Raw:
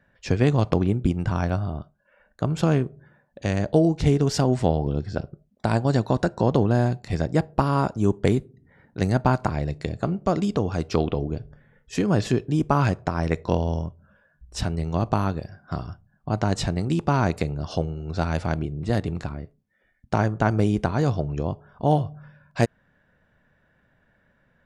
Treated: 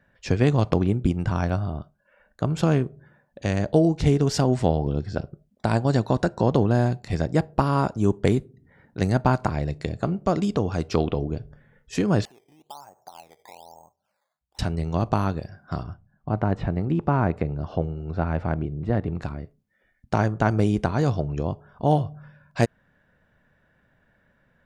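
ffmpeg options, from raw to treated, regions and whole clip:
ffmpeg -i in.wav -filter_complex "[0:a]asettb=1/sr,asplit=3[link_01][link_02][link_03];[link_01]atrim=end=12.254[link_04];[link_02]atrim=start=12.25:end=14.59,asetpts=PTS-STARTPTS,afade=type=in:duration=0.004:curve=qsin,afade=type=out:start_time=2.336:duration=0.004:curve=qsin,acompressor=threshold=-27dB:ratio=5:attack=3.2:release=140:knee=1:detection=peak,bandpass=frequency=820:width_type=q:width=6.4,acrusher=samples=11:mix=1:aa=0.000001:lfo=1:lforange=11:lforate=1.1[link_05];[link_03]atrim=start=14.586[link_06];[link_04][link_05]acrossfade=duration=0.004:curve1=hsin:curve2=qsin[link_07];[link_07][link_06]acrossfade=duration=0.004:curve1=qsin:curve2=hsin,asettb=1/sr,asplit=3[link_08][link_09][link_10];[link_08]atrim=end=15.834[link_11];[link_09]atrim=start=15.83:end=19.22,asetpts=PTS-STARTPTS,afade=type=in:duration=0.004:curve=qsin,afade=type=out:start_time=3.386:duration=0.004:curve=qsin,acrossover=split=2700[link_12][link_13];[link_13]acompressor=threshold=-54dB:ratio=4:attack=1:release=60[link_14];[link_12][link_14]amix=inputs=2:normalize=0,aemphasis=mode=reproduction:type=75kf[link_15];[link_10]atrim=start=19.216[link_16];[link_11][link_15]acrossfade=duration=0.004:curve1=hsin:curve2=qsin[link_17];[link_17][link_16]acrossfade=duration=0.004:curve1=qsin:curve2=hsin" out.wav

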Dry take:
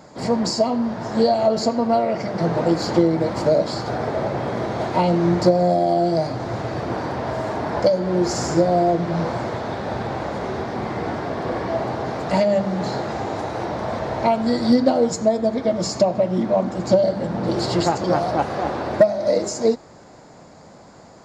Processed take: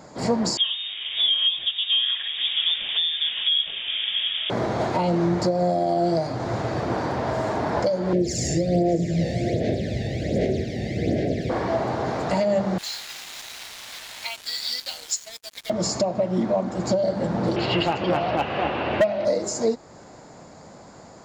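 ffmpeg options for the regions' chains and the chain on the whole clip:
ffmpeg -i in.wav -filter_complex "[0:a]asettb=1/sr,asplit=3[link_01][link_02][link_03];[link_01]atrim=end=0.574[link_04];[link_02]atrim=start=0.57:end=4.5,asetpts=PTS-STARTPTS,afade=type=in:duration=0.004:curve=qsin,afade=type=out:start_time=3.926:duration=0.004:curve=qsin,highpass=440,lowpass=frequency=3300:width_type=q:width=0.5098,lowpass=frequency=3300:width_type=q:width=0.6013,lowpass=frequency=3300:width_type=q:width=0.9,lowpass=frequency=3300:width_type=q:width=2.563,afreqshift=-3900[link_05];[link_03]atrim=start=4.496[link_06];[link_04][link_05]acrossfade=duration=0.004:curve1=hsin:curve2=qsin[link_07];[link_07][link_06]acrossfade=duration=0.004:curve1=qsin:curve2=hsin,asettb=1/sr,asplit=3[link_08][link_09][link_10];[link_08]atrim=end=8.134[link_11];[link_09]atrim=start=8.13:end=11.5,asetpts=PTS-STARTPTS,afade=type=in:duration=0.004:curve=qsin,afade=type=out:start_time=3.366:duration=0.004:curve=qsin,asuperstop=centerf=1100:order=8:qfactor=0.89,aphaser=in_gain=1:out_gain=1:delay=1.1:decay=0.57:speed=1.3:type=sinusoidal,aecho=1:1:608:0.168,atrim=end_sample=148617[link_12];[link_10]atrim=start=11.496[link_13];[link_11][link_12]acrossfade=duration=0.004:curve1=hsin:curve2=qsin[link_14];[link_14][link_13]acrossfade=duration=0.004:curve1=qsin:curve2=hsin,asettb=1/sr,asplit=3[link_15][link_16][link_17];[link_15]atrim=end=12.784[link_18];[link_16]atrim=start=12.78:end=15.7,asetpts=PTS-STARTPTS,afade=type=in:duration=0.004:curve=qsin,afade=type=out:start_time=2.916:duration=0.004:curve=qsin,highpass=frequency=2900:width_type=q:width=1.9,highshelf=frequency=4900:gain=5.5,acrusher=bits=5:mix=0:aa=0.5[link_19];[link_17]atrim=start=15.696[link_20];[link_18][link_19]acrossfade=duration=0.004:curve1=hsin:curve2=qsin[link_21];[link_21][link_20]acrossfade=duration=0.004:curve1=qsin:curve2=hsin,asettb=1/sr,asplit=3[link_22][link_23][link_24];[link_22]atrim=end=17.564[link_25];[link_23]atrim=start=17.56:end=19.25,asetpts=PTS-STARTPTS,afade=type=in:duration=0.004:curve=qsin,afade=type=out:start_time=1.686:duration=0.004:curve=qsin,lowpass=frequency=2800:width_type=q:width=7.4,asoftclip=type=hard:threshold=-9dB[link_26];[link_24]atrim=start=19.246[link_27];[link_25][link_26]acrossfade=duration=0.004:curve1=hsin:curve2=qsin[link_28];[link_28][link_27]acrossfade=duration=0.004:curve1=qsin:curve2=hsin,equalizer=frequency=7000:width=5.1:gain=3.5,alimiter=limit=-13dB:level=0:latency=1:release=286" out.wav

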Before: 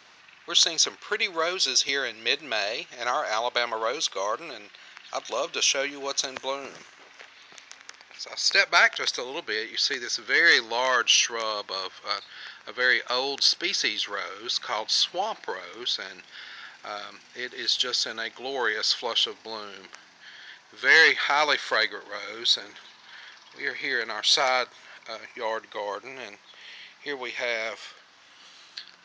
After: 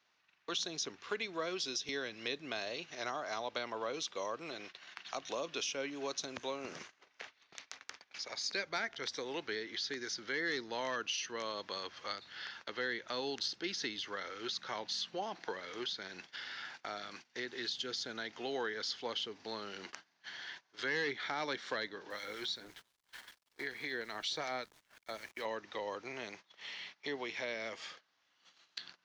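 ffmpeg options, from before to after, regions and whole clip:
ffmpeg -i in.wav -filter_complex "[0:a]asettb=1/sr,asplit=3[link_01][link_02][link_03];[link_01]atrim=end=22.104[link_04];[link_02]atrim=start=22.1:end=25.45,asetpts=PTS-STARTPTS,afade=type=in:duration=0.004:curve=qsin,afade=type=out:start_time=3.346:duration=0.004:curve=qsin,acrossover=split=1600[link_05][link_06];[link_05]aeval=exprs='val(0)*(1-0.5/2+0.5/2*cos(2*PI*5.3*n/s))':channel_layout=same[link_07];[link_06]aeval=exprs='val(0)*(1-0.5/2-0.5/2*cos(2*PI*5.3*n/s))':channel_layout=same[link_08];[link_07][link_08]amix=inputs=2:normalize=0,aeval=exprs='val(0)*gte(abs(val(0)),0.00376)':channel_layout=same[link_09];[link_03]atrim=start=25.446[link_10];[link_04][link_09]acrossfade=duration=0.004:curve1=hsin:curve2=qsin[link_11];[link_11][link_10]acrossfade=duration=0.004:curve1=qsin:curve2=hsin,agate=range=-22dB:threshold=-47dB:ratio=16:detection=peak,acrossover=split=310[link_12][link_13];[link_13]acompressor=threshold=-42dB:ratio=3[link_14];[link_12][link_14]amix=inputs=2:normalize=0" out.wav

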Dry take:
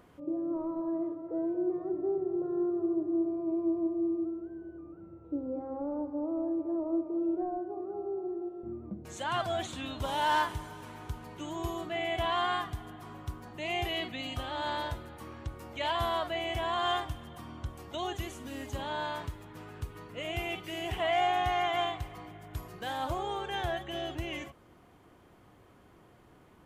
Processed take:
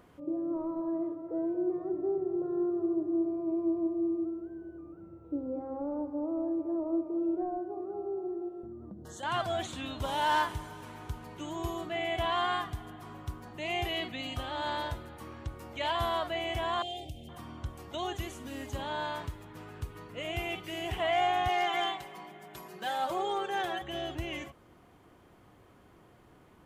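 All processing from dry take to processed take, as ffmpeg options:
ffmpeg -i in.wav -filter_complex "[0:a]asettb=1/sr,asplit=3[link_01][link_02][link_03];[link_01]atrim=end=8.644[link_04];[link_02]atrim=start=8.64:end=9.23,asetpts=PTS-STARTPTS,afade=type=in:duration=0.004:curve=qsin,afade=type=out:start_time=0.586:duration=0.004:curve=qsin,asuperstop=centerf=2400:order=8:qfactor=2.3,acompressor=threshold=-42dB:ratio=3:attack=3.2:release=140:knee=1:detection=peak[link_05];[link_03]atrim=start=9.226[link_06];[link_04][link_05]acrossfade=duration=0.004:curve1=hsin:curve2=qsin[link_07];[link_07][link_06]acrossfade=duration=0.004:curve1=qsin:curve2=hsin,asettb=1/sr,asplit=3[link_08][link_09][link_10];[link_08]atrim=end=16.824[link_11];[link_09]atrim=start=16.82:end=17.29,asetpts=PTS-STARTPTS,afade=type=in:duration=0.004:curve=qsin,afade=type=out:start_time=0.466:duration=0.004:curve=qsin,asuperstop=centerf=1300:order=8:qfactor=0.78,acompressor=threshold=-39dB:ratio=2:attack=3.2:release=140:knee=1:detection=peak[link_12];[link_10]atrim=start=17.286[link_13];[link_11][link_12]acrossfade=duration=0.004:curve1=hsin:curve2=qsin[link_14];[link_14][link_13]acrossfade=duration=0.004:curve1=qsin:curve2=hsin,asettb=1/sr,asplit=3[link_15][link_16][link_17];[link_15]atrim=end=21.484[link_18];[link_16]atrim=start=21.48:end=23.82,asetpts=PTS-STARTPTS,afade=type=in:duration=0.004:curve=qsin,afade=type=out:start_time=2.336:duration=0.004:curve=qsin,highpass=240,aecho=1:1:5.2:0.71,atrim=end_sample=103194,volume=23.5dB,asoftclip=hard,volume=-23.5dB[link_19];[link_17]atrim=start=23.816[link_20];[link_18][link_19]acrossfade=duration=0.004:curve1=hsin:curve2=qsin[link_21];[link_21][link_20]acrossfade=duration=0.004:curve1=qsin:curve2=hsin" out.wav

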